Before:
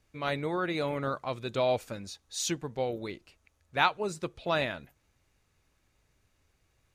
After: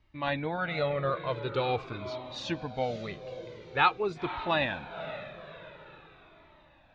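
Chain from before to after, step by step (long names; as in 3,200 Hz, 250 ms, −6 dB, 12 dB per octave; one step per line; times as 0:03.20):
de-essing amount 65%
low-pass filter 4,100 Hz 24 dB per octave
feedback delay with all-pass diffusion 522 ms, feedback 48%, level −12 dB
flanger whose copies keep moving one way falling 0.46 Hz
level +6 dB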